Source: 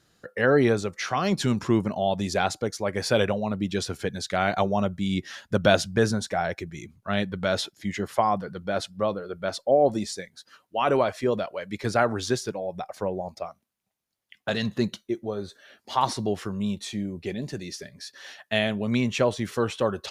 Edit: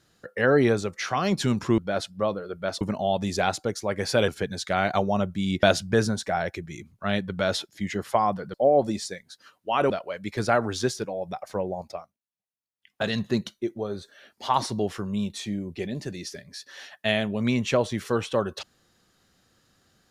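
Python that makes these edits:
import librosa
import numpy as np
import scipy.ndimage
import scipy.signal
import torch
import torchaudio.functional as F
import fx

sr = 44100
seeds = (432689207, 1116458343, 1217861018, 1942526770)

y = fx.edit(x, sr, fx.cut(start_s=3.25, length_s=0.66),
    fx.cut(start_s=5.26, length_s=0.41),
    fx.move(start_s=8.58, length_s=1.03, to_s=1.78),
    fx.cut(start_s=10.97, length_s=0.4),
    fx.fade_down_up(start_s=13.37, length_s=1.12, db=-17.5, fade_s=0.26), tone=tone)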